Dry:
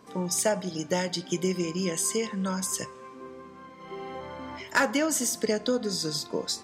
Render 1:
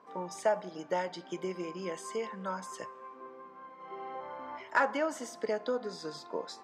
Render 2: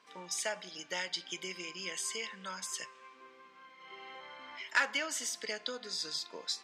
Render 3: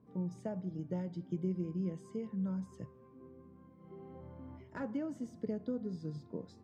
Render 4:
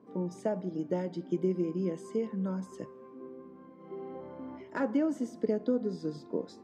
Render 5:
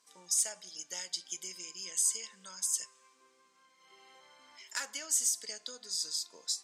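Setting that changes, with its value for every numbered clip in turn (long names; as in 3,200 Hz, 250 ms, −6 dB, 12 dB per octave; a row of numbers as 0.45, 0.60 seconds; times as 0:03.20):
resonant band-pass, frequency: 900, 2,700, 100, 290, 7,800 Hertz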